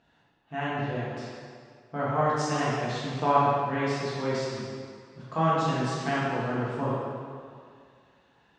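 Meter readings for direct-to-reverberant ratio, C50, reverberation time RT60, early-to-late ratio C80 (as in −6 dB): −9.5 dB, −3.0 dB, 2.1 s, −1.0 dB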